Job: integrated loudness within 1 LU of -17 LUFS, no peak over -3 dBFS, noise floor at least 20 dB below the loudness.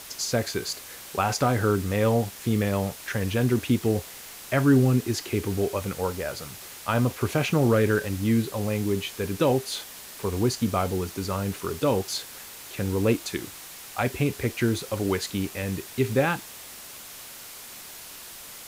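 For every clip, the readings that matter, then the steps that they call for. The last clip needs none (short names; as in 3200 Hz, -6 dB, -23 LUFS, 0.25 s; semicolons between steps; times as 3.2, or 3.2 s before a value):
noise floor -43 dBFS; noise floor target -46 dBFS; loudness -26.0 LUFS; peak -10.0 dBFS; loudness target -17.0 LUFS
-> denoiser 6 dB, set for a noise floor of -43 dBFS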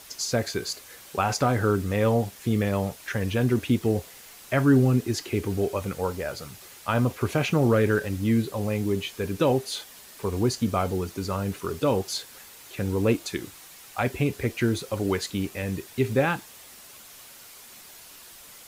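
noise floor -48 dBFS; loudness -26.0 LUFS; peak -10.0 dBFS; loudness target -17.0 LUFS
-> gain +9 dB; limiter -3 dBFS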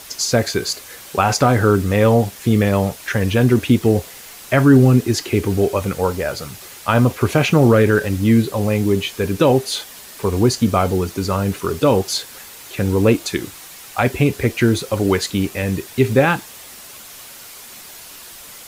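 loudness -17.5 LUFS; peak -3.0 dBFS; noise floor -39 dBFS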